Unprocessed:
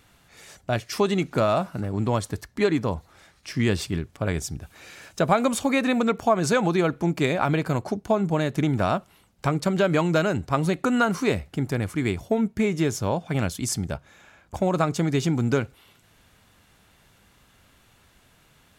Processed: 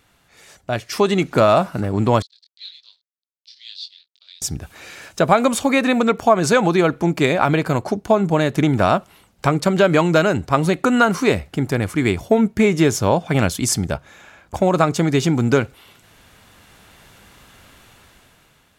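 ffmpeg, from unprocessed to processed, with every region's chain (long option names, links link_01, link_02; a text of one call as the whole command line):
ffmpeg -i in.wav -filter_complex "[0:a]asettb=1/sr,asplit=3[link_01][link_02][link_03];[link_01]atrim=end=2.224[link_04];[link_02]atrim=start=2.22:end=4.42,asetpts=PTS-STARTPTS,afade=type=in:duration=0.004:curve=qsin,afade=type=out:start_time=2.196:duration=0.004:curve=qsin,flanger=delay=17.5:depth=7.9:speed=2.7,aeval=exprs='sgn(val(0))*max(abs(val(0))-0.00562,0)':channel_layout=same,asuperpass=centerf=4100:order=4:qfactor=3.6[link_05];[link_03]atrim=start=4.416[link_06];[link_04][link_05]acrossfade=duration=0.004:curve1=hsin:curve2=qsin[link_07];[link_07][link_06]acrossfade=duration=0.004:curve1=qsin:curve2=hsin,bass=frequency=250:gain=-3,treble=frequency=4000:gain=-1,dynaudnorm=framelen=270:gausssize=7:maxgain=11.5dB" out.wav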